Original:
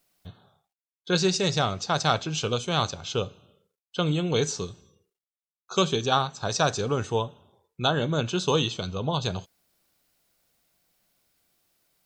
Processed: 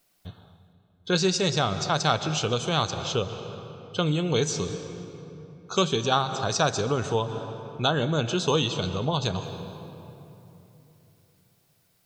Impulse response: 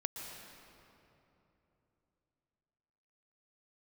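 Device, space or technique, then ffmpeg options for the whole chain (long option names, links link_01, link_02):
ducked reverb: -filter_complex "[0:a]asplit=3[link_01][link_02][link_03];[1:a]atrim=start_sample=2205[link_04];[link_02][link_04]afir=irnorm=-1:irlink=0[link_05];[link_03]apad=whole_len=531479[link_06];[link_05][link_06]sidechaincompress=threshold=-31dB:ratio=8:attack=30:release=147,volume=-2.5dB[link_07];[link_01][link_07]amix=inputs=2:normalize=0,volume=-1.5dB"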